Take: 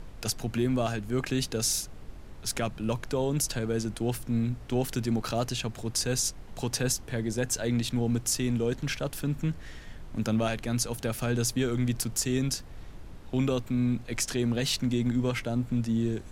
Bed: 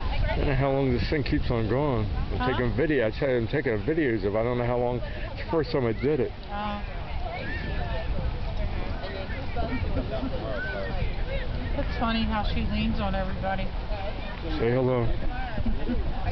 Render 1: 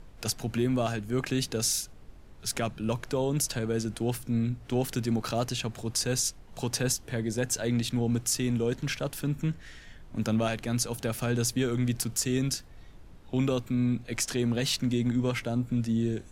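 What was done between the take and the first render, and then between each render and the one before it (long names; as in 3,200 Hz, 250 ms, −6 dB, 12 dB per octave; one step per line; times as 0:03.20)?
noise reduction from a noise print 6 dB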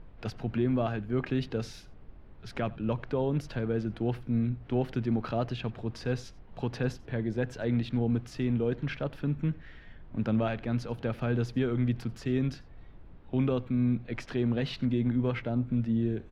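high-frequency loss of the air 370 metres
single-tap delay 90 ms −22.5 dB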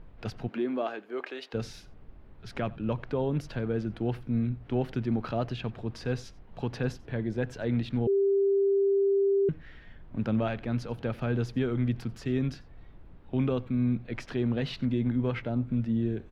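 0:00.47–0:01.53: high-pass filter 220 Hz → 490 Hz 24 dB per octave
0:08.07–0:09.49: beep over 395 Hz −21 dBFS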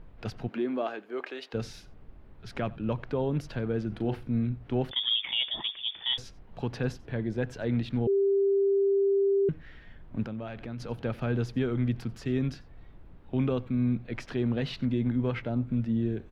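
0:03.88–0:04.30: double-tracking delay 38 ms −8.5 dB
0:04.91–0:06.18: voice inversion scrambler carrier 3,500 Hz
0:10.23–0:10.80: downward compressor 3 to 1, threshold −36 dBFS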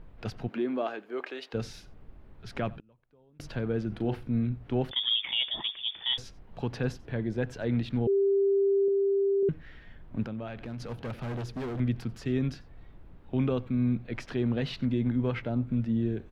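0:02.77–0:03.40: gate with flip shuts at −31 dBFS, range −33 dB
0:08.88–0:09.43: high-pass filter 240 Hz 6 dB per octave
0:10.65–0:11.80: hard clipping −32 dBFS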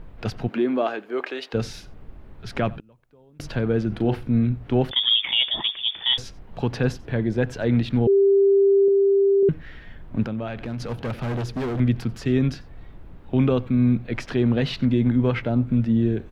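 level +8 dB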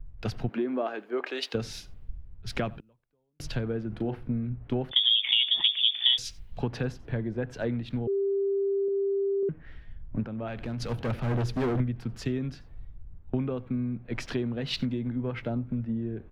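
downward compressor 12 to 1, threshold −26 dBFS, peak gain reduction 12 dB
multiband upward and downward expander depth 100%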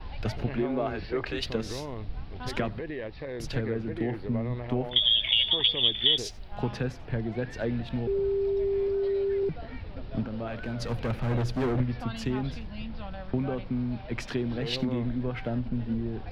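mix in bed −12 dB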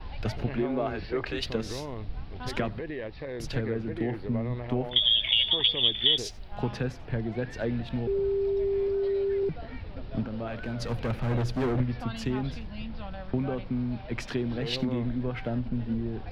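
no processing that can be heard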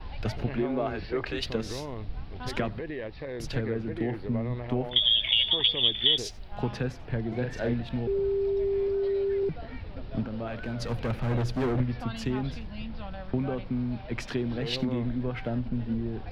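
0:07.28–0:07.74: double-tracking delay 41 ms −4 dB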